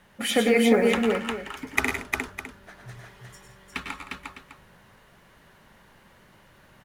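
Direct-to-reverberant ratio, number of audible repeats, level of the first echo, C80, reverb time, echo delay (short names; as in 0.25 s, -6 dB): none, 4, -9.0 dB, none, none, 99 ms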